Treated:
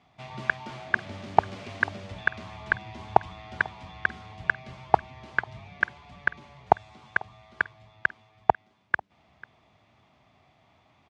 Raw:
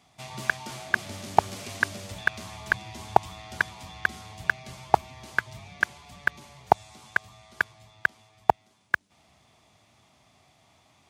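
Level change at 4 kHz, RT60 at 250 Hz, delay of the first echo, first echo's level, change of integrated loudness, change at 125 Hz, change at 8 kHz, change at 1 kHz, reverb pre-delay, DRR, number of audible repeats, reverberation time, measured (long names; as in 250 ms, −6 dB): −5.5 dB, no reverb audible, 494 ms, −22.0 dB, 0.0 dB, 0.0 dB, below −15 dB, 0.0 dB, no reverb audible, no reverb audible, 1, no reverb audible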